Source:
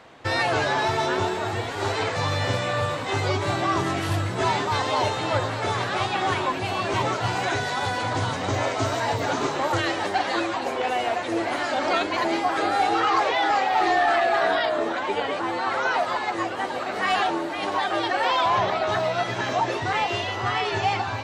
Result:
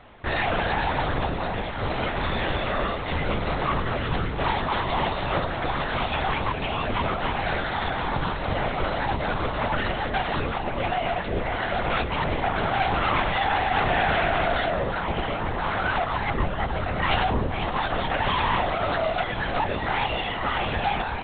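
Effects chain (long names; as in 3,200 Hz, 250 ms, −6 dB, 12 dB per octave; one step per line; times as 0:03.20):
wavefolder on the positive side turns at −21 dBFS
linear-prediction vocoder at 8 kHz whisper
0:16.17–0:17.66: low-shelf EQ 210 Hz +6.5 dB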